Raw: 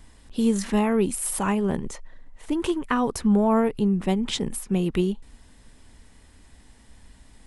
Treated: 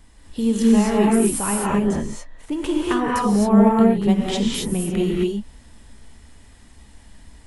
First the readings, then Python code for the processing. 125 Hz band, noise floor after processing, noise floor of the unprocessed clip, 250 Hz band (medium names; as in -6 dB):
+4.0 dB, -48 dBFS, -53 dBFS, +6.0 dB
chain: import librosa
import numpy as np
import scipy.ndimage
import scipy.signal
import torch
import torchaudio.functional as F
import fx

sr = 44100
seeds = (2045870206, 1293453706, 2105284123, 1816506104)

y = fx.rev_gated(x, sr, seeds[0], gate_ms=290, shape='rising', drr_db=-3.5)
y = y * 10.0 ** (-1.0 / 20.0)